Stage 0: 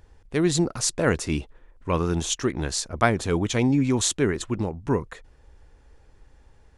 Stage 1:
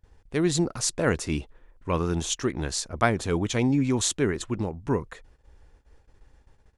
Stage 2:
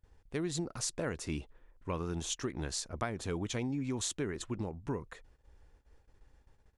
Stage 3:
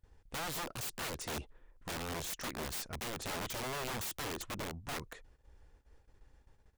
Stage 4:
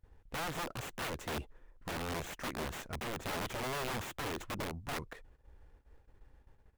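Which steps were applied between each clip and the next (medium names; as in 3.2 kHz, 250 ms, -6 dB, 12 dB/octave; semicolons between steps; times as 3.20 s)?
gate -52 dBFS, range -18 dB; trim -2 dB
compression 6:1, threshold -25 dBFS, peak gain reduction 9.5 dB; trim -6.5 dB
integer overflow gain 34 dB
median filter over 9 samples; trim +2 dB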